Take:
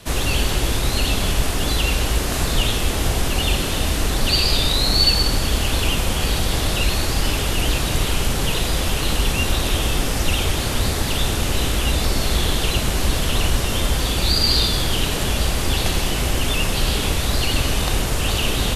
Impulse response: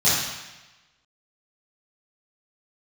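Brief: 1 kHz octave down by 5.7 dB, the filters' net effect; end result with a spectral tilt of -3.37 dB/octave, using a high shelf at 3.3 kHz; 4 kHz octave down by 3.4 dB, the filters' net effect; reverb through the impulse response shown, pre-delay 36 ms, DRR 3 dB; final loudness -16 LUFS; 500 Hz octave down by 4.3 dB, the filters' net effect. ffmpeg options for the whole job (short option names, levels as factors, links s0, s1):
-filter_complex "[0:a]equalizer=f=500:t=o:g=-4,equalizer=f=1000:t=o:g=-6.5,highshelf=f=3300:g=5,equalizer=f=4000:t=o:g=-7.5,asplit=2[s0][s1];[1:a]atrim=start_sample=2205,adelay=36[s2];[s1][s2]afir=irnorm=-1:irlink=0,volume=0.0944[s3];[s0][s3]amix=inputs=2:normalize=0,volume=1.41"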